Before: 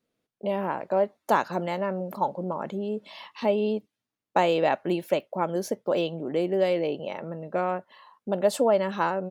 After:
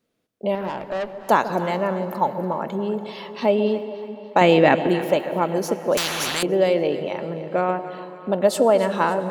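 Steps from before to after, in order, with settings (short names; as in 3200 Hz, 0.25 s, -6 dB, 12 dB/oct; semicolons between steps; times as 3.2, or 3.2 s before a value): 0.55–1.17 tube stage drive 28 dB, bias 0.4; 4.41–4.87 graphic EQ 125/250/2000 Hz +7/+9/+7 dB; echo with dull and thin repeats by turns 0.143 s, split 810 Hz, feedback 71%, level -12 dB; on a send at -14 dB: reverb RT60 4.6 s, pre-delay 72 ms; 5.97–6.43 on the sum: spectral compressor 10:1; gain +5 dB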